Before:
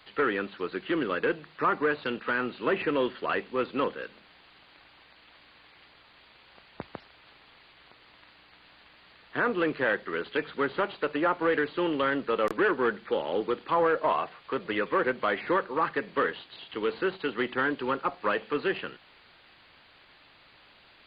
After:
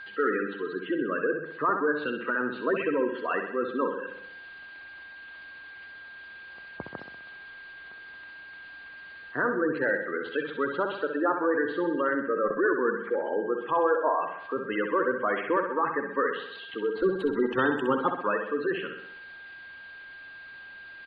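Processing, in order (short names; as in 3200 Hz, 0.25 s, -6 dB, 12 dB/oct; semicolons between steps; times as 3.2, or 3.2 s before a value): 17.02–18.11 half-waves squared off; spectral gate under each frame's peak -15 dB strong; whine 1600 Hz -40 dBFS; on a send: feedback echo 64 ms, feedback 56%, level -7 dB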